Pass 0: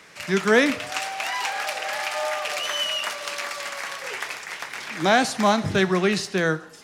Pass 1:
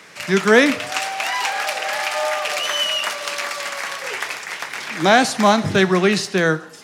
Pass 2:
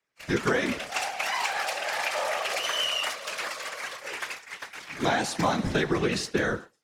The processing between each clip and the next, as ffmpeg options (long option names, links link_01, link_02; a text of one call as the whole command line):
ffmpeg -i in.wav -af "highpass=94,volume=5dB" out.wav
ffmpeg -i in.wav -af "agate=range=-33dB:threshold=-23dB:ratio=3:detection=peak,acompressor=threshold=-16dB:ratio=6,afftfilt=real='hypot(re,im)*cos(2*PI*random(0))':imag='hypot(re,im)*sin(2*PI*random(1))':win_size=512:overlap=0.75" out.wav